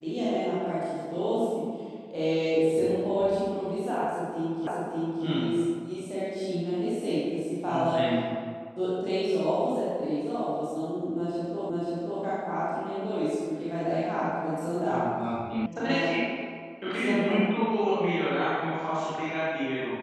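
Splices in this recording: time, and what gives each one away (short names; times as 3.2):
4.67 repeat of the last 0.58 s
11.7 repeat of the last 0.53 s
15.66 sound cut off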